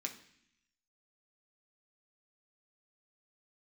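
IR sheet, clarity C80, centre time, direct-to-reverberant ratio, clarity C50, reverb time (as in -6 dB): 15.0 dB, 13 ms, 1.5 dB, 11.5 dB, 0.65 s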